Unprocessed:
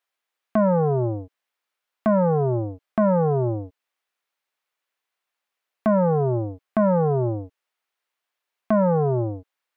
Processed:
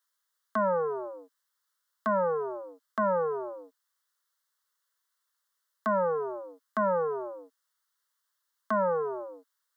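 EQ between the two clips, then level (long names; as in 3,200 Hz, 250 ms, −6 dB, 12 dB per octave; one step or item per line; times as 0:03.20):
Butterworth high-pass 210 Hz 36 dB per octave
tilt shelving filter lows −9.5 dB, about 750 Hz
phaser with its sweep stopped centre 490 Hz, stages 8
−2.0 dB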